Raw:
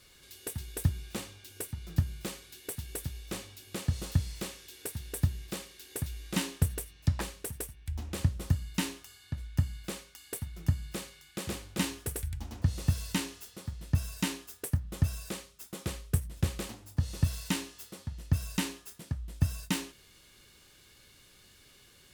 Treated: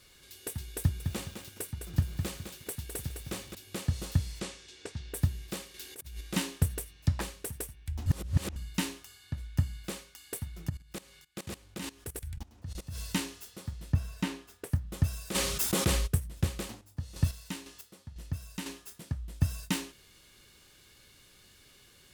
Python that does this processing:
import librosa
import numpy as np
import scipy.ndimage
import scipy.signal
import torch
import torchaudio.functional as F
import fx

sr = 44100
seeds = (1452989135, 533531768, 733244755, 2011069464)

y = fx.echo_crushed(x, sr, ms=208, feedback_pct=35, bits=8, wet_db=-6.0, at=(0.79, 3.55))
y = fx.lowpass(y, sr, hz=fx.line((4.39, 10000.0), (5.13, 5500.0)), slope=24, at=(4.39, 5.13), fade=0.02)
y = fx.over_compress(y, sr, threshold_db=-42.0, ratio=-0.5, at=(5.74, 6.21))
y = fx.level_steps(y, sr, step_db=19, at=(10.68, 12.98), fade=0.02)
y = fx.high_shelf(y, sr, hz=fx.line((13.92, 3500.0), (14.69, 5100.0)), db=-11.5, at=(13.92, 14.69), fade=0.02)
y = fx.env_flatten(y, sr, amount_pct=70, at=(15.34, 16.06), fade=0.02)
y = fx.chopper(y, sr, hz=2.0, depth_pct=60, duty_pct=30, at=(16.66, 18.72))
y = fx.edit(y, sr, fx.reverse_span(start_s=8.06, length_s=0.5), tone=tone)